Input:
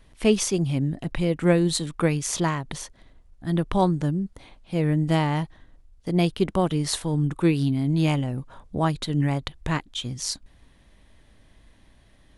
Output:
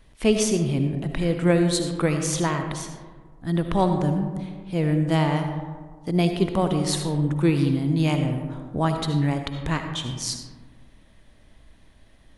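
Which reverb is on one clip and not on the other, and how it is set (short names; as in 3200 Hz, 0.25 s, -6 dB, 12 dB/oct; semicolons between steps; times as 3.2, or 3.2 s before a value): digital reverb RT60 1.6 s, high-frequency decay 0.35×, pre-delay 35 ms, DRR 5.5 dB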